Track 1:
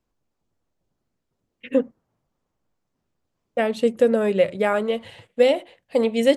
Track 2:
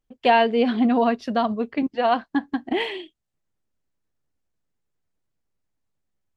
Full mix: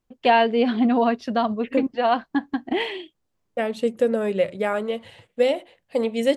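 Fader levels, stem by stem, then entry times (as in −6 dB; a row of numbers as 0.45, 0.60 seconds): −3.0, 0.0 decibels; 0.00, 0.00 seconds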